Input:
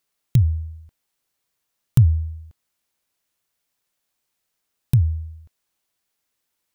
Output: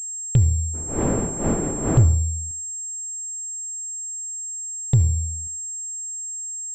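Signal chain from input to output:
gain on one half-wave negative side −3 dB
0:00.73–0:02.03: wind on the microphone 380 Hz −32 dBFS
in parallel at −0.5 dB: downward compressor, threshold −25 dBFS, peak gain reduction 14.5 dB
on the sum: soft clipping −6.5 dBFS, distortion −19 dB
on a send at −14 dB: convolution reverb RT60 0.45 s, pre-delay 62 ms
on the sum: switching amplifier with a slow clock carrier 7,500 Hz

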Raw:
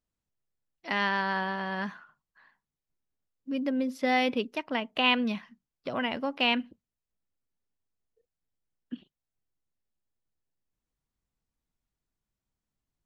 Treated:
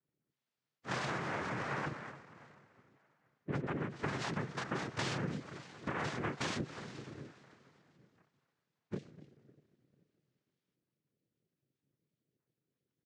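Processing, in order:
spectral magnitudes quantised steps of 30 dB
parametric band 1,800 Hz −7.5 dB 0.86 octaves
far-end echo of a speakerphone 250 ms, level −16 dB
dense smooth reverb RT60 3 s, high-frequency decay 0.9×, DRR 17 dB
multi-voice chorus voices 4, 0.18 Hz, delay 29 ms, depth 4.8 ms
cochlear-implant simulation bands 3
low-pass filter 4,400 Hz 12 dB per octave
parametric band 140 Hz +8 dB 0.56 octaves
downward compressor 20 to 1, threshold −38 dBFS, peak gain reduction 16.5 dB
level +4.5 dB

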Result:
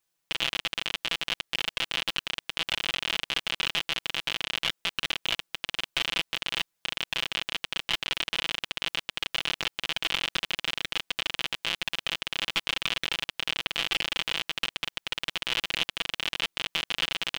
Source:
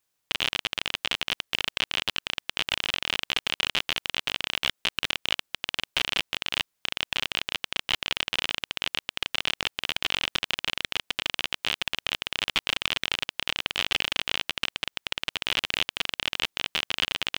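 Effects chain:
comb filter 6 ms, depth 68%
level −3 dB

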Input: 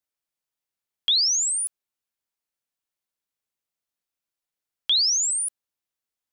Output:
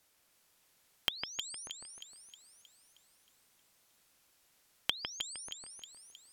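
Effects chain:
treble cut that deepens with the level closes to 1,100 Hz, closed at −23.5 dBFS
downward compressor 4 to 1, threshold −54 dBFS, peak gain reduction 24.5 dB
echo with a time of its own for lows and highs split 2,900 Hz, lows 154 ms, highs 314 ms, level −5 dB
level +18 dB

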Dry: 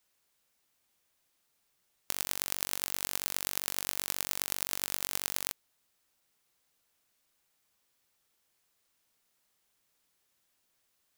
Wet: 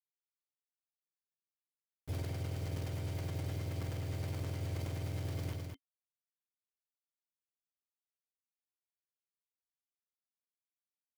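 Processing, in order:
frequency axis turned over on the octave scale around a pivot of 470 Hz
downward compressor 12 to 1, threshold −40 dBFS, peak gain reduction 8.5 dB
phaser with its sweep stopped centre 540 Hz, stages 4
bit reduction 10 bits
hollow resonant body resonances 270/2,100/3,100 Hz, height 9 dB
on a send: single-tap delay 209 ms −20.5 dB
on the sum: level that may fall only so fast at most 30 dB per second
level +8 dB

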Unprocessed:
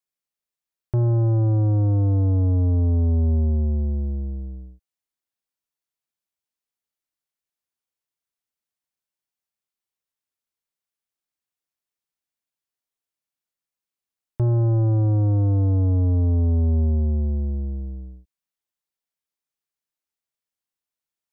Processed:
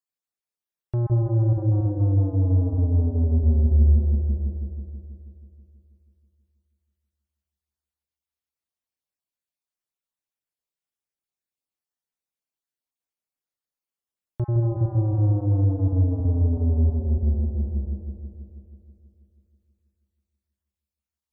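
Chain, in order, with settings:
time-frequency cells dropped at random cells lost 24%
0:03.45–0:03.97: parametric band 74 Hz +7.5 dB 0.84 octaves
bucket-brigade delay 161 ms, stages 1,024, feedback 68%, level −4.5 dB
level −3.5 dB

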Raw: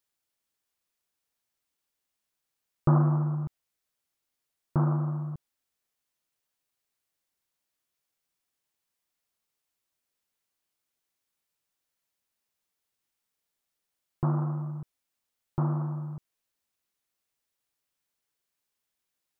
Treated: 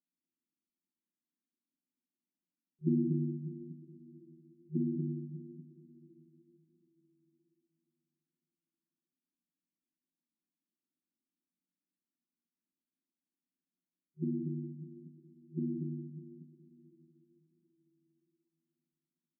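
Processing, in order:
brick-wall band-pass 160–370 Hz
loudspeakers that aren't time-aligned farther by 71 metres −10 dB, 82 metres −4 dB
coupled-rooms reverb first 0.52 s, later 4.1 s, from −18 dB, DRR 0.5 dB

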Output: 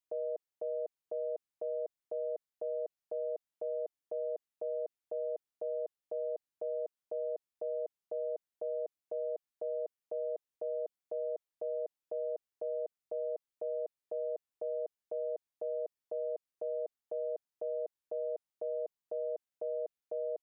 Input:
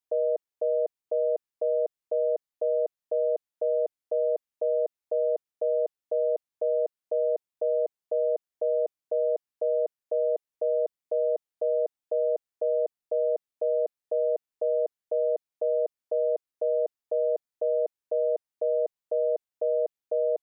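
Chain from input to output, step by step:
brickwall limiter −26.5 dBFS, peak gain reduction 7.5 dB
level −3.5 dB

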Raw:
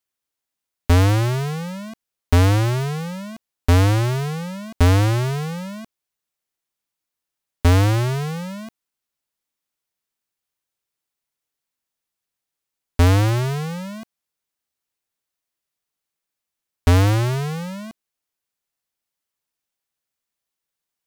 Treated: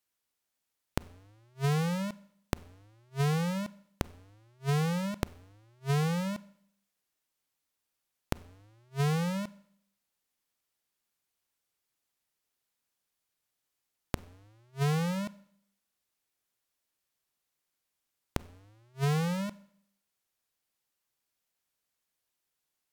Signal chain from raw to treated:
wrong playback speed 48 kHz file played as 44.1 kHz
gate with flip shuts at −21 dBFS, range −41 dB
four-comb reverb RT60 0.67 s, combs from 31 ms, DRR 19 dB

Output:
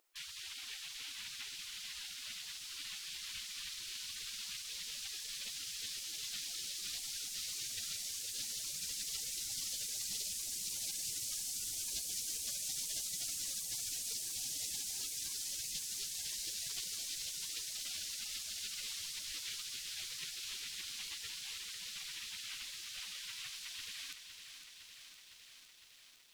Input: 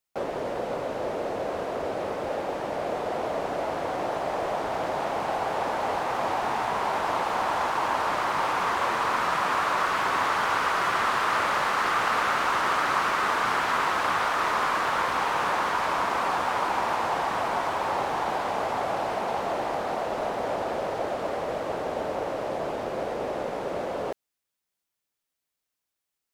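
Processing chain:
mains hum 50 Hz, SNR 28 dB
gate on every frequency bin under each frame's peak −30 dB weak
feedback echo at a low word length 508 ms, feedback 80%, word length 12 bits, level −9 dB
level +6 dB

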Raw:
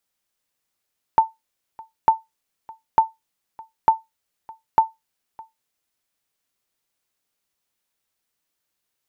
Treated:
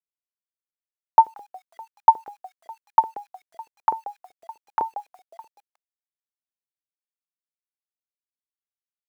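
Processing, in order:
0:03.74–0:04.82: treble cut that deepens with the level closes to 1,400 Hz, closed at −17 dBFS
high-shelf EQ 2,100 Hz −10.5 dB
echo with shifted repeats 181 ms, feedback 35%, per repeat −76 Hz, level −19 dB
bit reduction 10 bits
auto-filter high-pass saw up 7.9 Hz 410–1,900 Hz
level −1 dB

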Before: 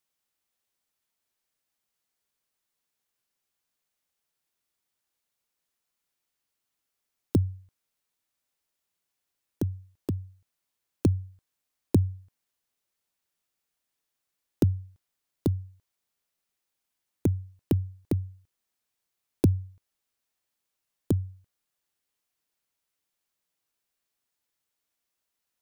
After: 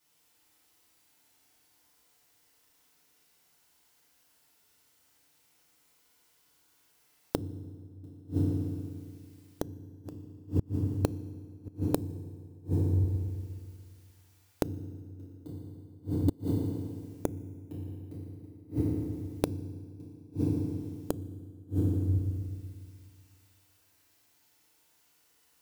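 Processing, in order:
delay that plays each chunk backwards 481 ms, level −12 dB
feedback delay network reverb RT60 2.1 s, low-frequency decay 1×, high-frequency decay 0.8×, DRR −10 dB
gate with flip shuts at −19 dBFS, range −31 dB
level +5.5 dB

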